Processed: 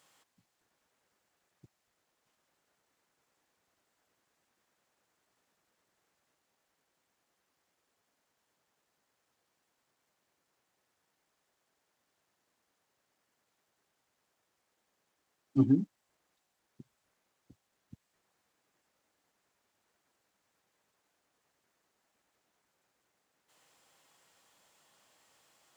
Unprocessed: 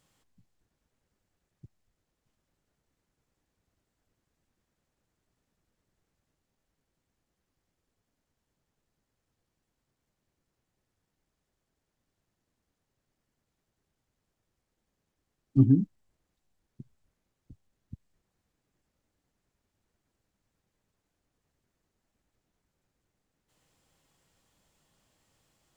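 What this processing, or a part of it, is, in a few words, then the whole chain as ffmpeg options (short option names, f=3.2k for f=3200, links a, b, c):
filter by subtraction: -filter_complex "[0:a]asplit=2[a][b];[b]lowpass=950,volume=-1[c];[a][c]amix=inputs=2:normalize=0,volume=5dB"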